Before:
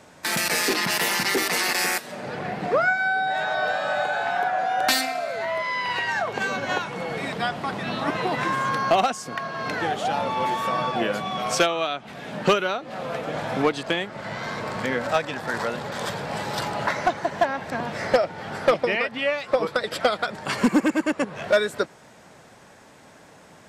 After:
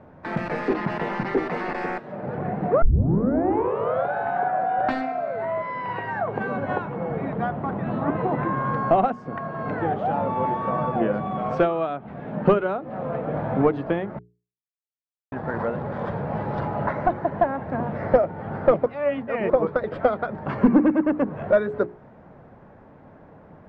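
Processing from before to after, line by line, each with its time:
0:02.82: tape start 1.31 s
0:06.96–0:08.57: low-pass filter 3,500 Hz 6 dB per octave
0:14.19–0:15.32: silence
0:18.86–0:19.50: reverse
whole clip: low-pass filter 1,400 Hz 12 dB per octave; spectral tilt −2.5 dB per octave; mains-hum notches 60/120/180/240/300/360/420 Hz

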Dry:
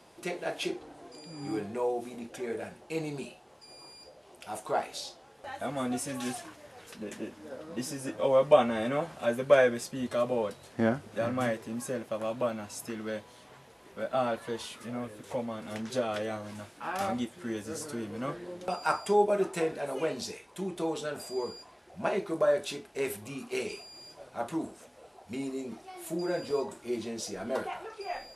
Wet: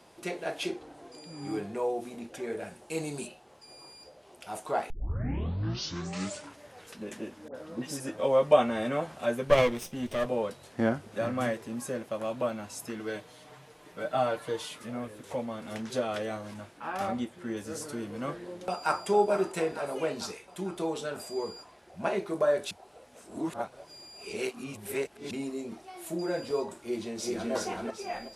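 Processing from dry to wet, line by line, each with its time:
0:02.67–0:03.26: parametric band 9,000 Hz +6.5 dB → +13.5 dB 0.99 octaves
0:04.90: tape start 1.73 s
0:07.48–0:08.00: all-pass dispersion highs, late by 68 ms, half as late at 1,400 Hz
0:09.47–0:10.26: lower of the sound and its delayed copy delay 0.33 ms
0:12.99–0:14.78: comb filter 6.6 ms
0:16.54–0:17.57: high-shelf EQ 3,600 Hz −6.5 dB
0:18.40–0:19.06: delay throw 450 ms, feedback 60%, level −9.5 dB
0:22.71–0:25.31: reverse
0:26.77–0:27.52: delay throw 380 ms, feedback 35%, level −1 dB

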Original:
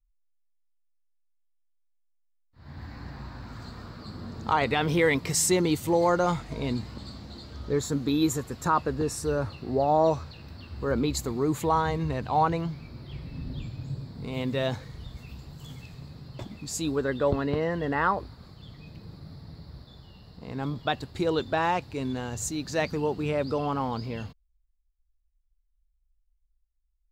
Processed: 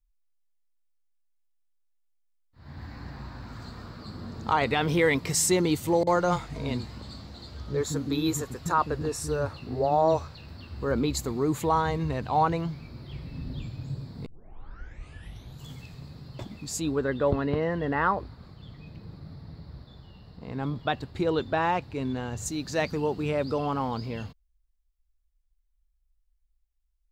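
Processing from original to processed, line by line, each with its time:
0:06.03–0:10.49: multiband delay without the direct sound lows, highs 40 ms, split 280 Hz
0:14.26: tape start 1.39 s
0:16.80–0:22.46: bass and treble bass +1 dB, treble −7 dB

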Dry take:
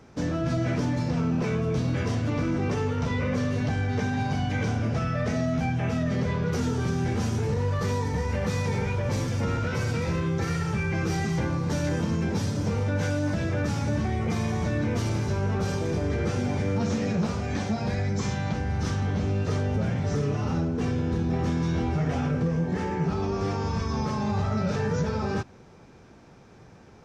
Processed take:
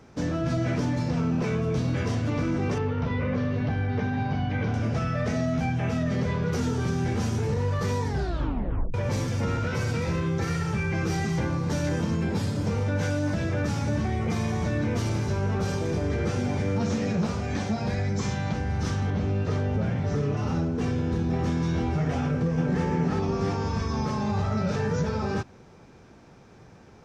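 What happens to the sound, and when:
0:02.78–0:04.74: high-frequency loss of the air 210 metres
0:08.05: tape stop 0.89 s
0:12.14–0:12.67: notch filter 5,900 Hz, Q 6.3
0:19.10–0:20.37: high-shelf EQ 6,600 Hz −12 dB
0:22.22–0:22.84: delay throw 350 ms, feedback 55%, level −4 dB

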